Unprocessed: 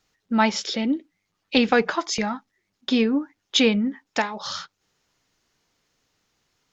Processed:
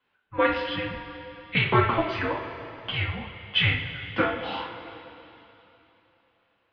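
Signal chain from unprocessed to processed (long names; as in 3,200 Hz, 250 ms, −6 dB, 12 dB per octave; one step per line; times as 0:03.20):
single-sideband voice off tune −360 Hz 550–3,400 Hz
coupled-rooms reverb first 0.36 s, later 3.3 s, from −16 dB, DRR −4.5 dB
level −3.5 dB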